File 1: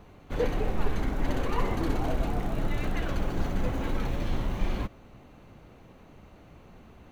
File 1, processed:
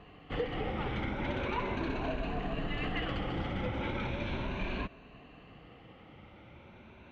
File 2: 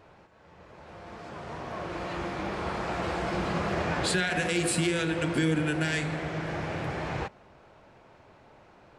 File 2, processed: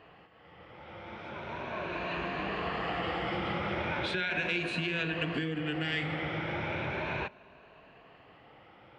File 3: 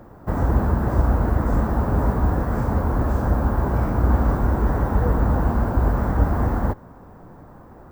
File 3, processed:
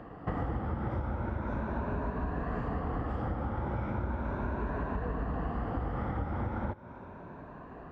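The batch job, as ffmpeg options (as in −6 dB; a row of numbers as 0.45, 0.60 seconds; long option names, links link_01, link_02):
-af "afftfilt=real='re*pow(10,8/40*sin(2*PI*(1.5*log(max(b,1)*sr/1024/100)/log(2)-(0.37)*(pts-256)/sr)))':imag='im*pow(10,8/40*sin(2*PI*(1.5*log(max(b,1)*sr/1024/100)/log(2)-(0.37)*(pts-256)/sr)))':win_size=1024:overlap=0.75,highpass=frequency=71:poles=1,acompressor=threshold=-28dB:ratio=12,lowpass=frequency=2900:width_type=q:width=2.2,volume=-2dB"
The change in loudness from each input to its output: −4.0, −3.5, −13.5 LU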